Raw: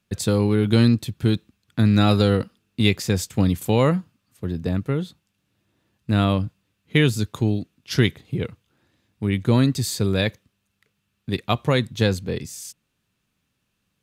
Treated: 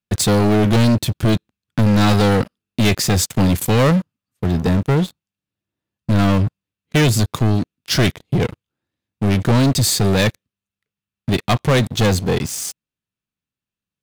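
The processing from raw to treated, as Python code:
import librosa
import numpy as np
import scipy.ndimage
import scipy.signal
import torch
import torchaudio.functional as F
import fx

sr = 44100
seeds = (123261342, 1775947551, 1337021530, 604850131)

y = fx.leveller(x, sr, passes=5)
y = y * librosa.db_to_amplitude(-6.5)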